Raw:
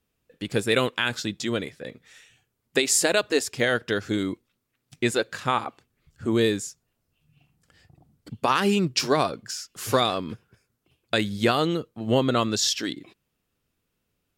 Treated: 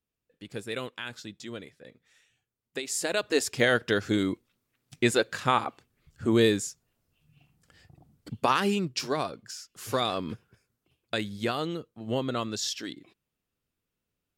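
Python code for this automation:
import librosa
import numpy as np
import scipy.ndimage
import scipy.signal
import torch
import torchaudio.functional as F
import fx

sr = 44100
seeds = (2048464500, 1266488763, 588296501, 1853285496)

y = fx.gain(x, sr, db=fx.line((2.83, -12.5), (3.48, 0.0), (8.36, 0.0), (8.91, -7.5), (9.91, -7.5), (10.28, -1.0), (11.37, -8.0)))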